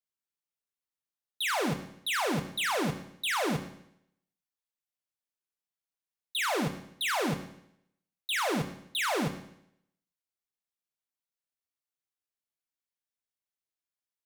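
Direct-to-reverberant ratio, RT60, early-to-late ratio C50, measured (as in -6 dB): 5.5 dB, 0.75 s, 9.5 dB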